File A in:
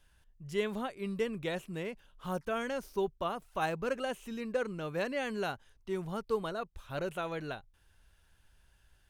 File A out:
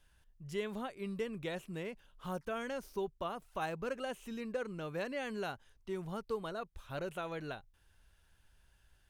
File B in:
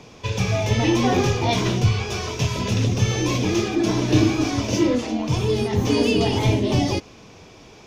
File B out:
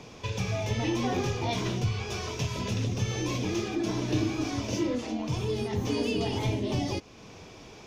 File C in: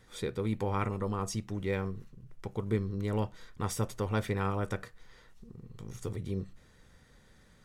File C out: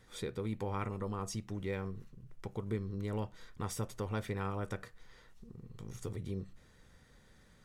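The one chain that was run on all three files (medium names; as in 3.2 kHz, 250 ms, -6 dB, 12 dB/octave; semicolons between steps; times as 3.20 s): compression 1.5:1, threshold -37 dBFS; trim -2 dB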